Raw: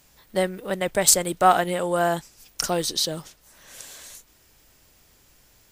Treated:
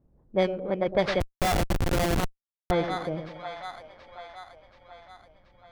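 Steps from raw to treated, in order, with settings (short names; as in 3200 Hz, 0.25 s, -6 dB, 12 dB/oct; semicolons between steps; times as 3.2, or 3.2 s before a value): FFT order left unsorted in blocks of 16 samples; LPF 3700 Hz 12 dB/oct; low-pass opened by the level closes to 400 Hz, open at -15 dBFS; split-band echo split 670 Hz, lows 0.11 s, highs 0.729 s, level -8.5 dB; 1.2–2.71 Schmitt trigger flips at -19.5 dBFS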